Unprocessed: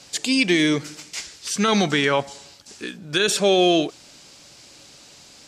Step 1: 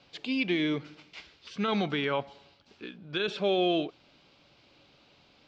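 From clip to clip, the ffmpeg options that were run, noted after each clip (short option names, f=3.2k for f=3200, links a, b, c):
-af "lowpass=f=3.6k:w=0.5412,lowpass=f=3.6k:w=1.3066,equalizer=f=1.8k:t=o:w=0.3:g=-6,volume=-9dB"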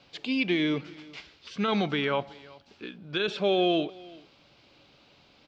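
-af "aecho=1:1:378:0.075,volume=2dB"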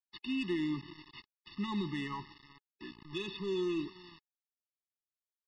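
-af "aresample=11025,acrusher=bits=6:mix=0:aa=0.000001,aresample=44100,asoftclip=type=tanh:threshold=-19.5dB,afftfilt=real='re*eq(mod(floor(b*sr/1024/430),2),0)':imag='im*eq(mod(floor(b*sr/1024/430),2),0)':win_size=1024:overlap=0.75,volume=-5.5dB"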